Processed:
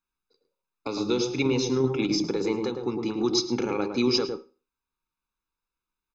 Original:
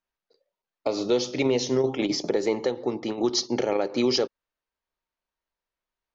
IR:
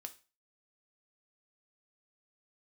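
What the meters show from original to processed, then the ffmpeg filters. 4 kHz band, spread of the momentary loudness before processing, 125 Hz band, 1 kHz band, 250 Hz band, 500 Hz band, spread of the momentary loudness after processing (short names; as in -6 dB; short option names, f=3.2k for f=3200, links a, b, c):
0.0 dB, 6 LU, +3.5 dB, -1.5 dB, +1.5 dB, -2.5 dB, 8 LU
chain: -filter_complex "[0:a]aecho=1:1:0.8:0.81,asplit=2[a][b];[b]tiltshelf=f=1.4k:g=7.5[c];[1:a]atrim=start_sample=2205,adelay=107[d];[c][d]afir=irnorm=-1:irlink=0,volume=-4dB[e];[a][e]amix=inputs=2:normalize=0,volume=-3dB"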